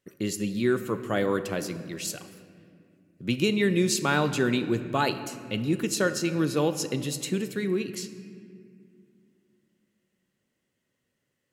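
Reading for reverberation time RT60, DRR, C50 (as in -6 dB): 2.3 s, 10.0 dB, 11.5 dB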